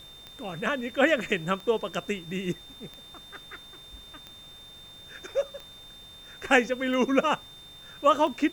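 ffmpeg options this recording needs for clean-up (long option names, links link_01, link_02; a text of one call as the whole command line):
ffmpeg -i in.wav -af "adeclick=threshold=4,bandreject=frequency=47.1:width_type=h:width=4,bandreject=frequency=94.2:width_type=h:width=4,bandreject=frequency=141.3:width_type=h:width=4,bandreject=frequency=188.4:width_type=h:width=4,bandreject=frequency=3600:width=30,afftdn=noise_reduction=24:noise_floor=-48" out.wav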